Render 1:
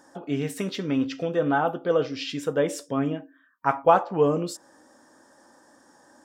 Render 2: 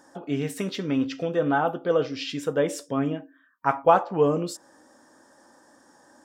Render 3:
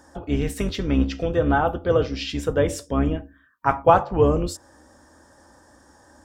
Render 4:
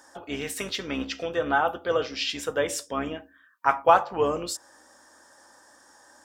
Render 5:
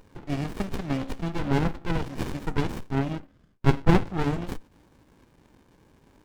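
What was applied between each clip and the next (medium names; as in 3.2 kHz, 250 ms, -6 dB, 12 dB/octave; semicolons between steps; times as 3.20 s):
no audible change
octave divider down 2 oct, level 0 dB; trim +2.5 dB
high-pass 1.2 kHz 6 dB/octave; trim +3 dB
sliding maximum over 65 samples; trim +3 dB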